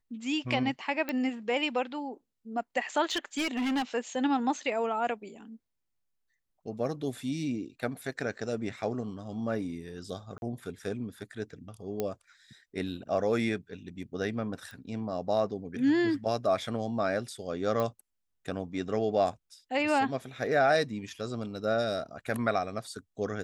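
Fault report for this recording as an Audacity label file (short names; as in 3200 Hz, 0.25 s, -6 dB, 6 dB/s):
1.090000	1.090000	pop -18 dBFS
3.110000	3.830000	clipped -26 dBFS
10.380000	10.420000	gap 41 ms
12.000000	12.000000	pop -17 dBFS
14.710000	14.710000	pop
17.800000	17.800000	pop -19 dBFS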